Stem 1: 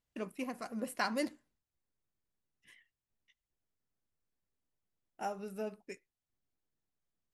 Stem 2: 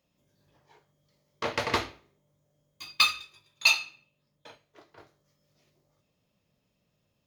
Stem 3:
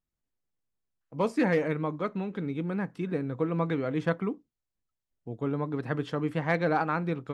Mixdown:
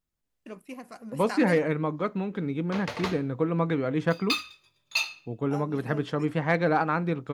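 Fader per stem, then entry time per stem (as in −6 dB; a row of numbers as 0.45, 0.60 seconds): −1.5, −5.5, +2.5 decibels; 0.30, 1.30, 0.00 seconds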